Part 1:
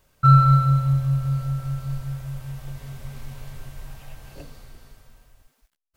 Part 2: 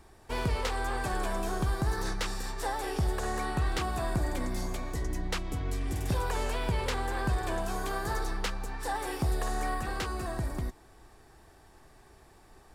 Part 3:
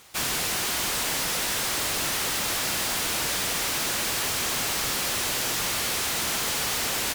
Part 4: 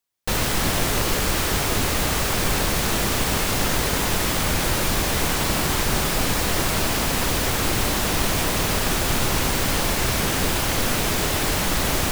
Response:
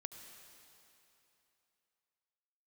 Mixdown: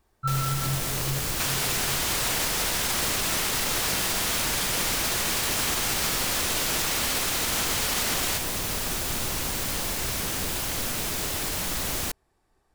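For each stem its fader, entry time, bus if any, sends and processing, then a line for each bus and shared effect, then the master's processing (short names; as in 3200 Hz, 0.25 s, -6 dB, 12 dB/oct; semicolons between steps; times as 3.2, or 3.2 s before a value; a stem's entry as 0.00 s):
-8.5 dB, 0.00 s, no send, chorus voices 4, 0.79 Hz, delay 20 ms, depth 3.5 ms
-13.5 dB, 0.00 s, no send, compressor 2.5:1, threshold -43 dBFS, peak gain reduction 12 dB
+2.5 dB, 1.25 s, no send, dry
-12.5 dB, 0.00 s, send -5 dB, high shelf 3700 Hz +7.5 dB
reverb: on, RT60 3.1 s, pre-delay 67 ms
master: limiter -17 dBFS, peak gain reduction 5 dB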